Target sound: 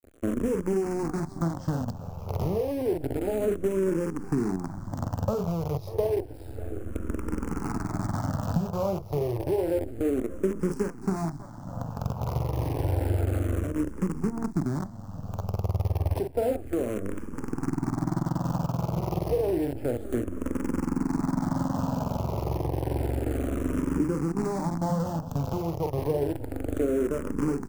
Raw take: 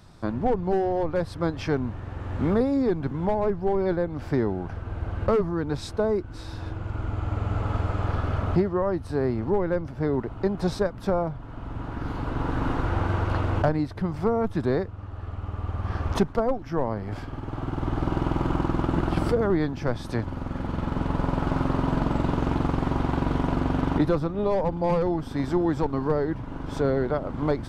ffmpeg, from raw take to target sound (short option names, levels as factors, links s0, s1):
-filter_complex "[0:a]asplit=2[s0][s1];[s1]adelay=42,volume=0.447[s2];[s0][s2]amix=inputs=2:normalize=0,asettb=1/sr,asplit=3[s3][s4][s5];[s3]atrim=end=13.584[s6];[s4]atrim=start=13.58:end=16,asetpts=PTS-STARTPTS,afade=t=in:d=0.004:c=qsin,afade=t=out:st=2.416:d=0.004:c=qsin,acrossover=split=290|3000[s7][s8][s9];[s8]acompressor=threshold=0.0126:ratio=2.5[s10];[s7][s10][s9]amix=inputs=3:normalize=0[s11];[s5]atrim=start=15.996[s12];[s6][s11]acrossfade=d=0.004:c1=hsin:c2=qsin[s13];[s13][s12]acrossfade=d=0.004:c1=qsin:c2=hsin,highpass=f=61:w=0.5412,highpass=f=61:w=1.3066,aeval=exprs='sgn(val(0))*max(abs(val(0))-0.00188,0)':c=same,aecho=1:1:591:0.158,acrusher=bits=5:dc=4:mix=0:aa=0.000001,firequalizer=gain_entry='entry(300,0);entry(1900,-13);entry(5700,-9)':delay=0.05:min_phase=1,acompressor=threshold=0.0501:ratio=6,equalizer=f=3700:t=o:w=0.69:g=-8.5,asplit=2[s14][s15];[s15]afreqshift=-0.3[s16];[s14][s16]amix=inputs=2:normalize=1,volume=2"